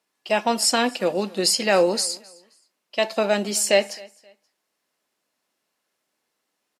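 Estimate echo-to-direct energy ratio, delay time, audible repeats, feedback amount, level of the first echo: -23.5 dB, 264 ms, 2, 29%, -24.0 dB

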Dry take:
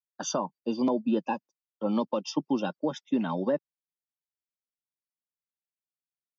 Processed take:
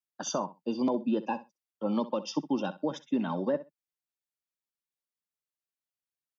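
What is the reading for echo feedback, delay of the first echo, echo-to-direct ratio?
16%, 64 ms, -15.5 dB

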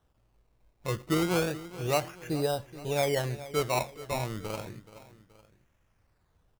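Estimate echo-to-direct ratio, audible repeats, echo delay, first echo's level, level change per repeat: -15.0 dB, 2, 426 ms, -16.0 dB, -6.5 dB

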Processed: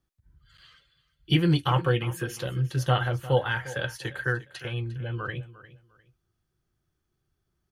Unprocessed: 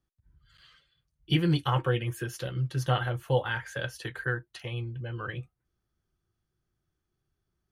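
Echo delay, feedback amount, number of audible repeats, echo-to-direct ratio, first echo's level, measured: 352 ms, 25%, 2, -17.0 dB, -17.0 dB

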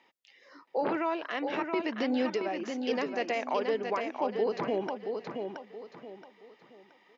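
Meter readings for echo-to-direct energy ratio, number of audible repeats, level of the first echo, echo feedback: -5.0 dB, 4, -5.5 dB, 33%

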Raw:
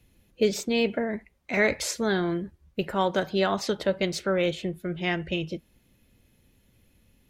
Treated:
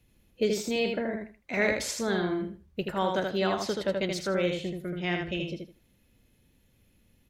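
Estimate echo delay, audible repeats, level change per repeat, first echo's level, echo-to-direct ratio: 79 ms, 3, -14.0 dB, -4.0 dB, -4.0 dB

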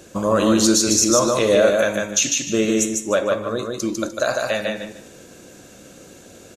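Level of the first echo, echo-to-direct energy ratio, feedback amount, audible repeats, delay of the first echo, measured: -3.0 dB, -2.5 dB, 24%, 3, 150 ms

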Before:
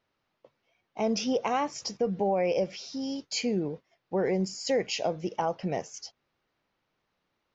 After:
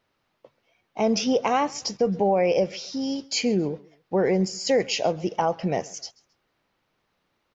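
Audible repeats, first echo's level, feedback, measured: 2, -23.5 dB, 33%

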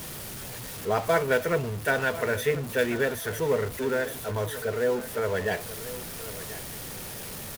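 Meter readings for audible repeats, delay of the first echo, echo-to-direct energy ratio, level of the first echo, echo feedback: 2, 1038 ms, -15.0 dB, -15.0 dB, 22%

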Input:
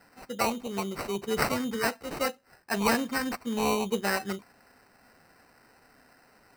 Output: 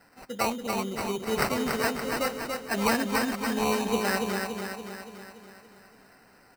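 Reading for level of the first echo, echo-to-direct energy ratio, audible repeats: -4.5 dB, -3.0 dB, 7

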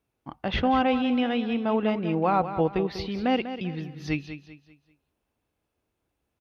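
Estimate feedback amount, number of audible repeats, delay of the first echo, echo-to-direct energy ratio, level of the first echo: 36%, 3, 195 ms, -10.5 dB, -11.0 dB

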